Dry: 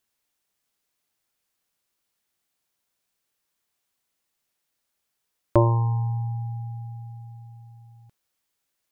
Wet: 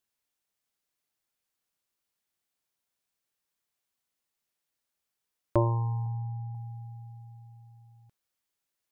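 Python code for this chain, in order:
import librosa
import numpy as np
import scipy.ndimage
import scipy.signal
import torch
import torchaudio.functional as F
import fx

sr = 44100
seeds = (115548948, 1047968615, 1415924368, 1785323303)

y = fx.lowpass(x, sr, hz=1200.0, slope=24, at=(6.06, 6.55))
y = y * librosa.db_to_amplitude(-6.5)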